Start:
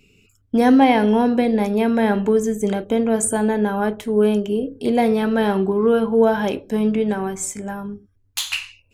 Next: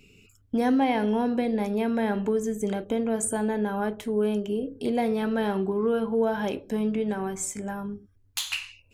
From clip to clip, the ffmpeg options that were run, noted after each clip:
ffmpeg -i in.wav -af "acompressor=threshold=-37dB:ratio=1.5" out.wav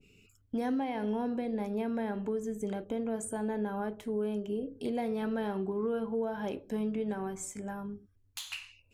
ffmpeg -i in.wav -af "alimiter=limit=-19dB:level=0:latency=1:release=255,adynamicequalizer=threshold=0.00631:dfrequency=1600:dqfactor=0.7:tfrequency=1600:tqfactor=0.7:attack=5:release=100:ratio=0.375:range=2:mode=cutabove:tftype=highshelf,volume=-6dB" out.wav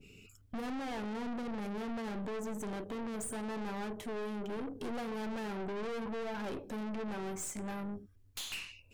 ffmpeg -i in.wav -af "aeval=exprs='(tanh(158*val(0)+0.4)-tanh(0.4))/158':channel_layout=same,volume=6.5dB" out.wav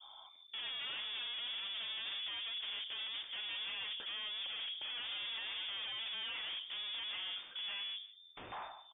ffmpeg -i in.wav -af "aeval=exprs='0.0112*(abs(mod(val(0)/0.0112+3,4)-2)-1)':channel_layout=same,lowpass=frequency=3100:width_type=q:width=0.5098,lowpass=frequency=3100:width_type=q:width=0.6013,lowpass=frequency=3100:width_type=q:width=0.9,lowpass=frequency=3100:width_type=q:width=2.563,afreqshift=-3600,aecho=1:1:152:0.133,volume=1.5dB" out.wav

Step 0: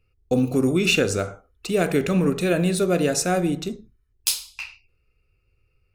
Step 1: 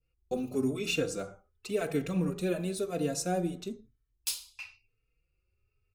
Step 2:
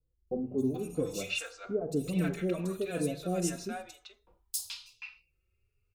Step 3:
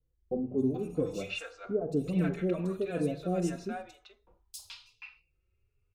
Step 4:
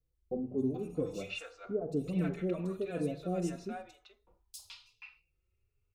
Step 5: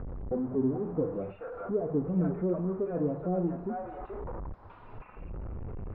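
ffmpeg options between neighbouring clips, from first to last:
ffmpeg -i in.wav -filter_complex "[0:a]adynamicequalizer=threshold=0.00794:dfrequency=1900:dqfactor=1.1:tfrequency=1900:tqfactor=1.1:attack=5:release=100:ratio=0.375:range=3:mode=cutabove:tftype=bell,asplit=2[link_01][link_02];[link_02]adelay=3.9,afreqshift=0.97[link_03];[link_01][link_03]amix=inputs=2:normalize=1,volume=-7.5dB" out.wav
ffmpeg -i in.wav -filter_complex "[0:a]acrossover=split=760|4700[link_01][link_02][link_03];[link_03]adelay=270[link_04];[link_02]adelay=430[link_05];[link_01][link_05][link_04]amix=inputs=3:normalize=0" out.wav
ffmpeg -i in.wav -af "lowpass=frequency=1900:poles=1,volume=1.5dB" out.wav
ffmpeg -i in.wav -af "bandreject=frequency=1600:width=19,volume=-3.5dB" out.wav
ffmpeg -i in.wav -af "aeval=exprs='val(0)+0.5*0.00944*sgn(val(0))':channel_layout=same,acompressor=mode=upward:threshold=-35dB:ratio=2.5,lowpass=frequency=1200:width=0.5412,lowpass=frequency=1200:width=1.3066,volume=3dB" out.wav

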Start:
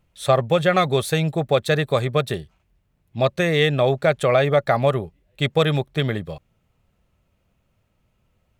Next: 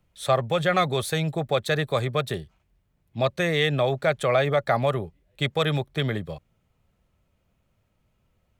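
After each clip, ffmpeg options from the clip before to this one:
ffmpeg -i in.wav -filter_complex "[0:a]bandreject=frequency=2700:width=27,acrossover=split=110|600|3000[link_01][link_02][link_03][link_04];[link_02]alimiter=limit=-19dB:level=0:latency=1[link_05];[link_01][link_05][link_03][link_04]amix=inputs=4:normalize=0,volume=-2.5dB" out.wav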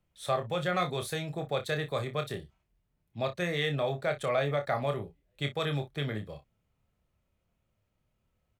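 ffmpeg -i in.wav -af "aecho=1:1:28|58:0.473|0.15,volume=-8.5dB" out.wav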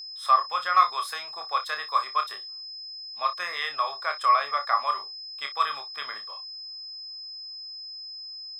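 ffmpeg -i in.wav -af "highpass=frequency=1100:width_type=q:width=9.9,aeval=exprs='val(0)+0.0141*sin(2*PI*5100*n/s)':channel_layout=same" out.wav

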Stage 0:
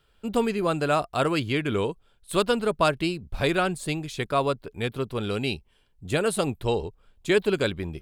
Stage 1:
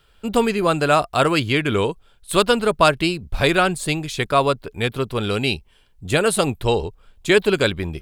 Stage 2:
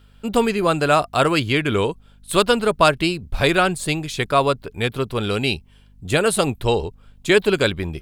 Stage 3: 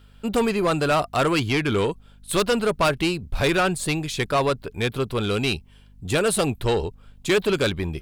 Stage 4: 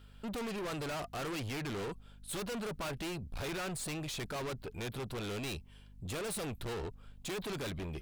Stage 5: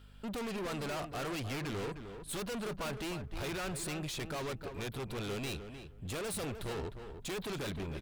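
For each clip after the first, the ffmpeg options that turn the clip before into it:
ffmpeg -i in.wav -af "equalizer=frequency=250:width=0.4:gain=-3.5,volume=8.5dB" out.wav
ffmpeg -i in.wav -af "aeval=exprs='val(0)+0.00316*(sin(2*PI*50*n/s)+sin(2*PI*2*50*n/s)/2+sin(2*PI*3*50*n/s)/3+sin(2*PI*4*50*n/s)/4+sin(2*PI*5*50*n/s)/5)':channel_layout=same" out.wav
ffmpeg -i in.wav -af "asoftclip=type=tanh:threshold=-14.5dB" out.wav
ffmpeg -i in.wav -af "asoftclip=type=tanh:threshold=-32dB,volume=-5dB" out.wav
ffmpeg -i in.wav -filter_complex "[0:a]asplit=2[link_01][link_02];[link_02]adelay=307,lowpass=frequency=2200:poles=1,volume=-8.5dB,asplit=2[link_03][link_04];[link_04]adelay=307,lowpass=frequency=2200:poles=1,volume=0.17,asplit=2[link_05][link_06];[link_06]adelay=307,lowpass=frequency=2200:poles=1,volume=0.17[link_07];[link_01][link_03][link_05][link_07]amix=inputs=4:normalize=0" out.wav

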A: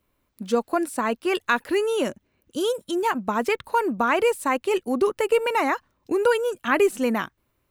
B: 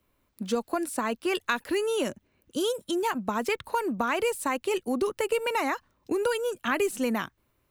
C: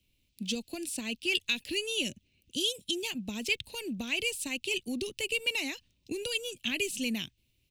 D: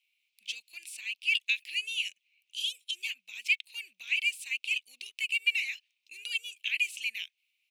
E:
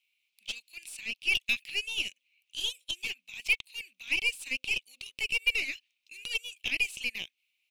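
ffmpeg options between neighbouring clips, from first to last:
ffmpeg -i in.wav -filter_complex "[0:a]acrossover=split=150|3000[link_01][link_02][link_03];[link_02]acompressor=threshold=-27dB:ratio=2.5[link_04];[link_01][link_04][link_03]amix=inputs=3:normalize=0" out.wav
ffmpeg -i in.wav -af "firequalizer=gain_entry='entry(110,0);entry(450,-12);entry(1200,-28);entry(2600,7);entry(11000,-2);entry(15000,-4)':delay=0.05:min_phase=1" out.wav
ffmpeg -i in.wav -af "highpass=frequency=2300:width_type=q:width=4.9,volume=-7.5dB" out.wav
ffmpeg -i in.wav -af "bandreject=frequency=260.1:width_type=h:width=4,bandreject=frequency=520.2:width_type=h:width=4,aeval=exprs='0.2*(cos(1*acos(clip(val(0)/0.2,-1,1)))-cos(1*PI/2))+0.0112*(cos(8*acos(clip(val(0)/0.2,-1,1)))-cos(8*PI/2))':channel_layout=same" out.wav

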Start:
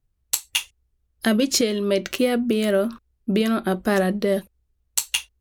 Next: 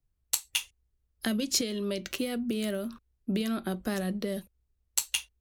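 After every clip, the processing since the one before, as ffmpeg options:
ffmpeg -i in.wav -filter_complex "[0:a]acrossover=split=200|3000[link_01][link_02][link_03];[link_02]acompressor=threshold=-27dB:ratio=6[link_04];[link_01][link_04][link_03]amix=inputs=3:normalize=0,volume=-5.5dB" out.wav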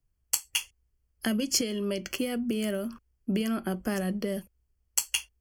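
ffmpeg -i in.wav -af "asuperstop=centerf=3800:order=12:qfactor=4.5,volume=1.5dB" out.wav

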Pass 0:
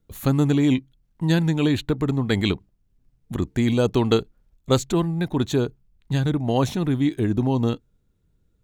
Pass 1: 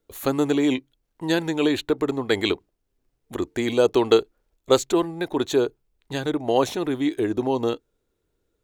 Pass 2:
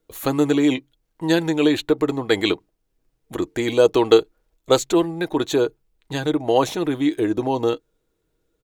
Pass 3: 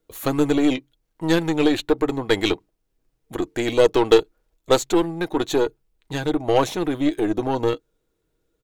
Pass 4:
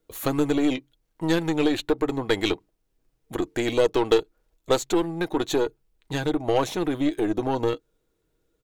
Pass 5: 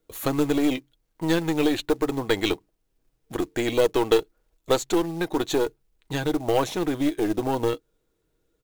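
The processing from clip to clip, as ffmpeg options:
ffmpeg -i in.wav -af "lowshelf=frequency=260:width_type=q:width=1.5:gain=-12,volume=1.5dB" out.wav
ffmpeg -i in.wav -af "aecho=1:1:6.3:0.34,volume=2dB" out.wav
ffmpeg -i in.wav -af "aeval=exprs='0.891*(cos(1*acos(clip(val(0)/0.891,-1,1)))-cos(1*PI/2))+0.0562*(cos(8*acos(clip(val(0)/0.891,-1,1)))-cos(8*PI/2))':channel_layout=same,volume=-1dB" out.wav
ffmpeg -i in.wav -af "acompressor=threshold=-24dB:ratio=1.5" out.wav
ffmpeg -i in.wav -af "acrusher=bits=5:mode=log:mix=0:aa=0.000001" out.wav

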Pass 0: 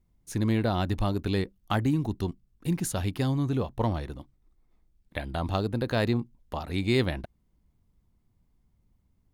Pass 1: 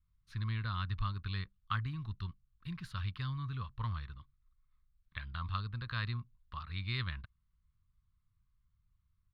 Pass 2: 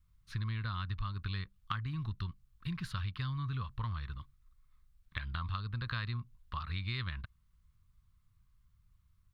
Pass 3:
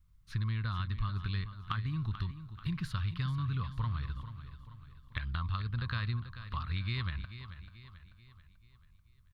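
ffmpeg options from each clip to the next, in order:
ffmpeg -i in.wav -af "firequalizer=gain_entry='entry(110,0);entry(280,-22);entry(750,-25);entry(1100,5);entry(2000,-2);entry(4200,0);entry(6600,-24)':delay=0.05:min_phase=1,volume=-6.5dB" out.wav
ffmpeg -i in.wav -af "acompressor=threshold=-41dB:ratio=6,volume=7dB" out.wav
ffmpeg -i in.wav -filter_complex "[0:a]lowshelf=frequency=390:gain=3.5,asplit=2[link_01][link_02];[link_02]aecho=0:1:437|874|1311|1748|2185:0.251|0.118|0.0555|0.0261|0.0123[link_03];[link_01][link_03]amix=inputs=2:normalize=0" out.wav

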